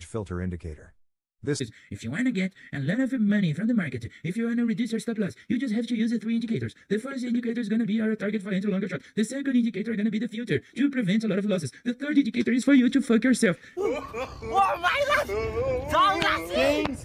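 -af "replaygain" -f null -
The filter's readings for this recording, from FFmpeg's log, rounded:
track_gain = +5.4 dB
track_peak = 0.198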